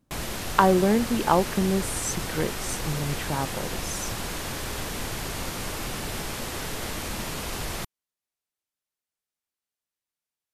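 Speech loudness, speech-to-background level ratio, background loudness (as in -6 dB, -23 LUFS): -26.0 LUFS, 6.0 dB, -32.0 LUFS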